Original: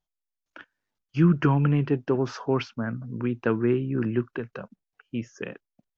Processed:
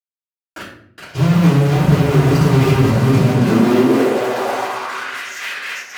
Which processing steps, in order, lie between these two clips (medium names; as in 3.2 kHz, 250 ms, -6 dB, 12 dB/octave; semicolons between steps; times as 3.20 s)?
backward echo that repeats 265 ms, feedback 57%, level -3 dB; bass shelf 360 Hz +12 dB; fuzz box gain 40 dB, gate -39 dBFS; high-pass sweep 85 Hz -> 1.8 kHz, 2.83–5.21 s; simulated room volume 92 m³, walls mixed, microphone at 3.2 m; trim -14 dB